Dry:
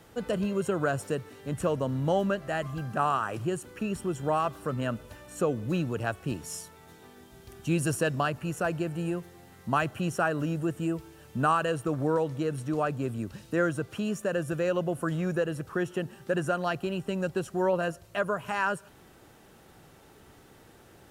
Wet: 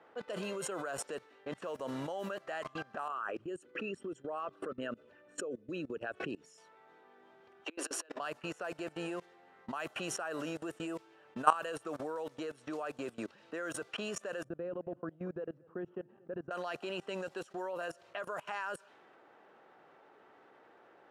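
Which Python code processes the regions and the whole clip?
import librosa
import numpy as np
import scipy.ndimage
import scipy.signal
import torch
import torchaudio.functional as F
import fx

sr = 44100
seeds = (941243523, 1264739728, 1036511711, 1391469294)

y = fx.chain(x, sr, fx.envelope_sharpen(power=1.5),
    fx.peak_eq(hz=880.0, db=-10.0, octaves=1.0),
    fx.pre_swell(db_per_s=150.0), at=(3.08, 6.58))
y = fx.chain(y, sr, fx.steep_highpass(hz=270.0, slope=96),
    fx.over_compress(threshold_db=-35.0, ratio=-0.5), at=(7.65, 8.2))
y = fx.chain(y, sr, fx.bandpass_q(hz=130.0, q=0.97),
    fx.low_shelf(hz=150.0, db=2.0),
    fx.echo_single(ms=231, db=-15.5), at=(14.44, 16.51))
y = fx.env_lowpass(y, sr, base_hz=1600.0, full_db=-23.0)
y = scipy.signal.sosfilt(scipy.signal.butter(2, 480.0, 'highpass', fs=sr, output='sos'), y)
y = fx.level_steps(y, sr, step_db=23)
y = y * 10.0 ** (7.5 / 20.0)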